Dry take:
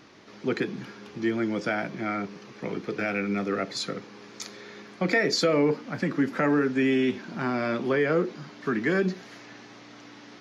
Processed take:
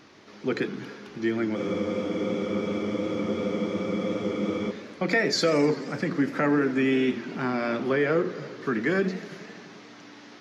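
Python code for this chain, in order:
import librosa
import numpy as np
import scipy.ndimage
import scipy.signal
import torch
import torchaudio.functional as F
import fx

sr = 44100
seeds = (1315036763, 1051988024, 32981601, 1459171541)

y = fx.hum_notches(x, sr, base_hz=60, count=3)
y = fx.spec_freeze(y, sr, seeds[0], at_s=1.59, hold_s=3.11)
y = fx.echo_warbled(y, sr, ms=86, feedback_pct=79, rate_hz=2.8, cents=204, wet_db=-16.5)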